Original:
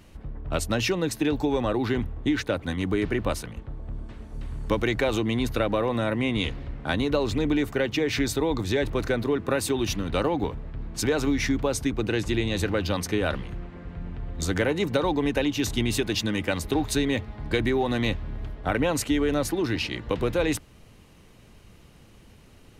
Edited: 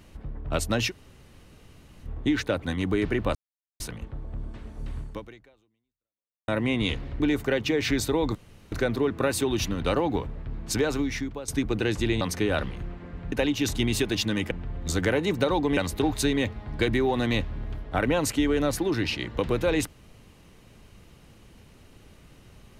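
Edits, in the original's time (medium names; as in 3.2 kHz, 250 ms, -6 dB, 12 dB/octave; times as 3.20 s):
0.89–2.06 s: room tone, crossfade 0.06 s
3.35 s: insert silence 0.45 s
4.54–6.03 s: fade out exponential
6.75–7.48 s: delete
8.63–9.00 s: room tone
11.03–11.76 s: fade out, to -15 dB
12.49–12.93 s: delete
15.30–16.49 s: move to 14.04 s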